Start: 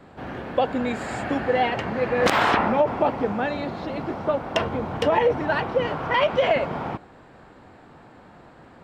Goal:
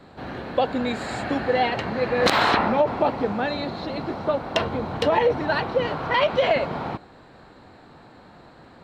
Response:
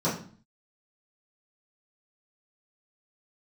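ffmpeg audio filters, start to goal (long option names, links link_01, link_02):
-af "equalizer=frequency=4100:width=5:gain=11"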